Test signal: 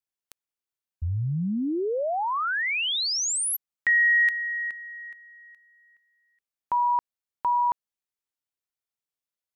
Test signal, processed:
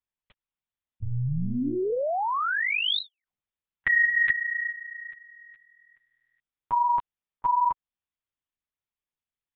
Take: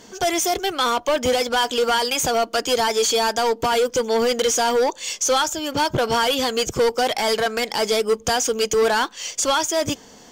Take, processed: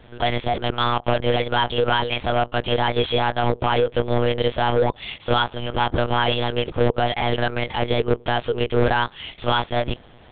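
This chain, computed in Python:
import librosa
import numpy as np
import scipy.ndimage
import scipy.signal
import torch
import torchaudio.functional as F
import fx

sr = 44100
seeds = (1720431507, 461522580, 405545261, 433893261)

y = fx.lpc_monotone(x, sr, seeds[0], pitch_hz=120.0, order=8)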